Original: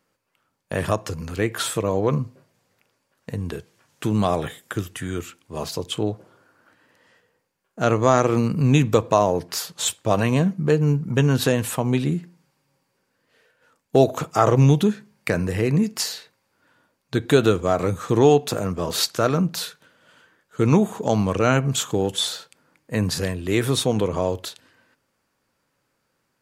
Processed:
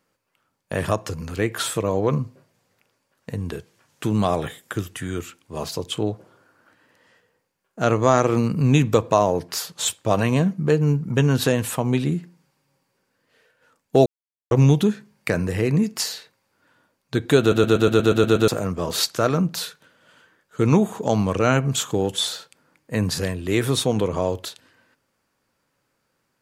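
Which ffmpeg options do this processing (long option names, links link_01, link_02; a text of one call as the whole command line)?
ffmpeg -i in.wav -filter_complex "[0:a]asplit=12[link_01][link_02][link_03][link_04][link_05][link_06][link_07][link_08][link_09][link_10][link_11][link_12];[link_01]atrim=end=14.06,asetpts=PTS-STARTPTS,afade=type=out:start_time=14.056:duration=0.004:curve=hsin[link_13];[link_02]atrim=start=14.06:end=14.51,asetpts=PTS-STARTPTS,volume=0[link_14];[link_03]atrim=start=14.51:end=17.522,asetpts=PTS-STARTPTS,afade=type=in:duration=0.004:curve=hsin[link_15];[link_04]atrim=start=17.398:end=17.522[link_16];[link_05]atrim=start=17.398:end=17.522[link_17];[link_06]atrim=start=17.398:end=17.522[link_18];[link_07]atrim=start=17.398:end=17.522[link_19];[link_08]atrim=start=17.398:end=17.522[link_20];[link_09]atrim=start=17.398:end=17.522[link_21];[link_10]atrim=start=17.398:end=17.522[link_22];[link_11]atrim=start=17.398:end=17.522[link_23];[link_12]atrim=start=18.478[link_24];[link_13][link_14][link_15]concat=n=3:v=0:a=1[link_25];[link_25][link_16]acrossfade=duration=0.004:curve1=hsin:curve2=hsin[link_26];[link_26][link_17]acrossfade=duration=0.004:curve1=hsin:curve2=hsin[link_27];[link_27][link_18]acrossfade=duration=0.004:curve1=hsin:curve2=hsin[link_28];[link_28][link_19]acrossfade=duration=0.004:curve1=hsin:curve2=hsin[link_29];[link_29][link_20]acrossfade=duration=0.004:curve1=hsin:curve2=hsin[link_30];[link_30][link_21]acrossfade=duration=0.004:curve1=hsin:curve2=hsin[link_31];[link_31][link_22]acrossfade=duration=0.004:curve1=hsin:curve2=hsin[link_32];[link_32][link_23]acrossfade=duration=0.004:curve1=hsin:curve2=hsin[link_33];[link_33][link_24]acrossfade=duration=0.004:curve1=hsin:curve2=hsin" out.wav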